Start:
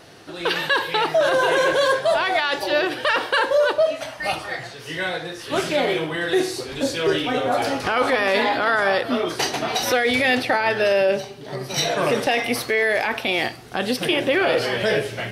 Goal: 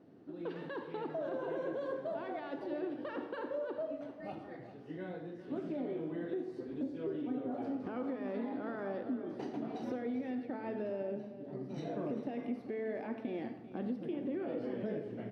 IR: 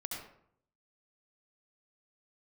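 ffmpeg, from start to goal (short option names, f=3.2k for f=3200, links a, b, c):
-filter_complex "[0:a]bandpass=f=250:t=q:w=2.8:csg=0,acompressor=threshold=-32dB:ratio=6,aecho=1:1:394:0.211,asplit=2[a][b];[1:a]atrim=start_sample=2205[c];[b][c]afir=irnorm=-1:irlink=0,volume=-5dB[d];[a][d]amix=inputs=2:normalize=0,volume=-5.5dB"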